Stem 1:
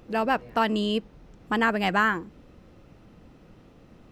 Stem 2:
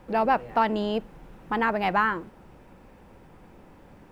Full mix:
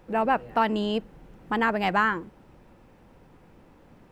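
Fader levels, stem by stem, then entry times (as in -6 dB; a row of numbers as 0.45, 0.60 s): -7.5, -4.5 dB; 0.00, 0.00 s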